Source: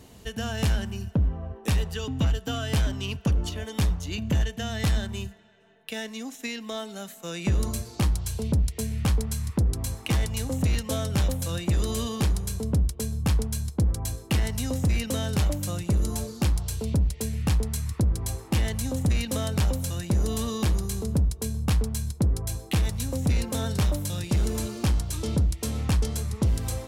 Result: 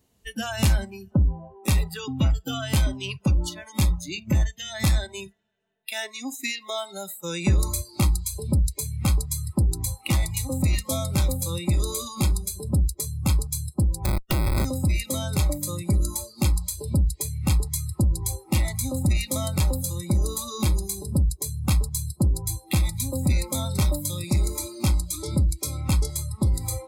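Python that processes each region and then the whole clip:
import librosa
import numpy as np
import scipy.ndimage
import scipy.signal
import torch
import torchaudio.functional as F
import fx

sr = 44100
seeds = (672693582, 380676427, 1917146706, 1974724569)

y = fx.chain(x, sr, fx.low_shelf(hz=69.0, db=9.5),
    fx.schmitt(flips_db=-26.0), at=(14.05, 14.65))
y = fx.rider(y, sr, range_db=4, speed_s=2.0)
y = fx.noise_reduce_blind(y, sr, reduce_db=23)
y = fx.high_shelf(y, sr, hz=6700.0, db=6.5)
y = y * 10.0 ** (2.0 / 20.0)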